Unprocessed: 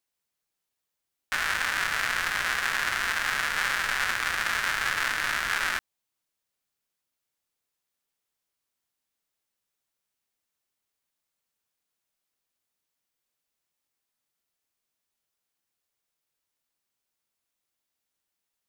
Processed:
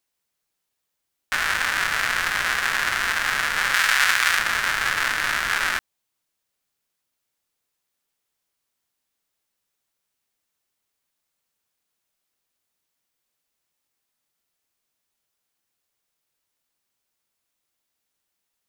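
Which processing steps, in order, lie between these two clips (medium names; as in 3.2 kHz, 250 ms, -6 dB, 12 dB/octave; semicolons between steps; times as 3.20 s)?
3.74–4.39 s: tilt shelf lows -6 dB, about 750 Hz; trim +4.5 dB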